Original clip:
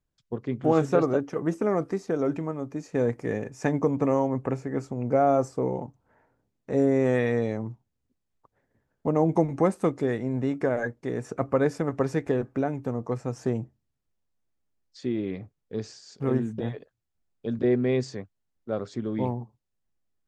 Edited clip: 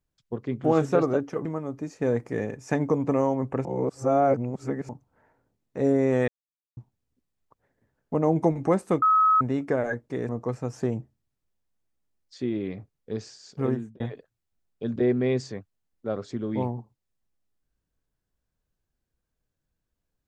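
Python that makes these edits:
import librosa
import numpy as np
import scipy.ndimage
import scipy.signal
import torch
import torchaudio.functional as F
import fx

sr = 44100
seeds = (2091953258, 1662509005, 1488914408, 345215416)

y = fx.edit(x, sr, fx.cut(start_s=1.45, length_s=0.93),
    fx.reverse_span(start_s=4.58, length_s=1.24),
    fx.silence(start_s=7.21, length_s=0.49),
    fx.bleep(start_s=9.95, length_s=0.39, hz=1280.0, db=-16.0),
    fx.cut(start_s=11.22, length_s=1.7),
    fx.fade_out_span(start_s=16.29, length_s=0.34), tone=tone)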